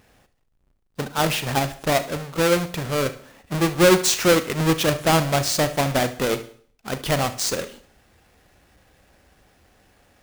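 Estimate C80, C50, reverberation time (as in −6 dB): 20.0 dB, 13.5 dB, non-exponential decay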